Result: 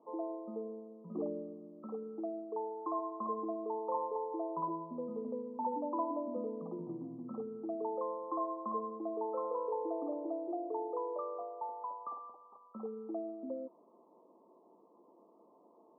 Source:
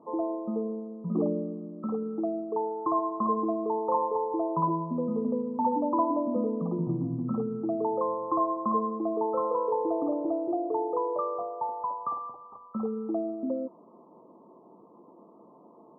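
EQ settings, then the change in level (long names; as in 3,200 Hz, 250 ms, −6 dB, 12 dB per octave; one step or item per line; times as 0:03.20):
high-pass filter 310 Hz 12 dB per octave
low-pass filter 1,100 Hz 12 dB per octave
−7.5 dB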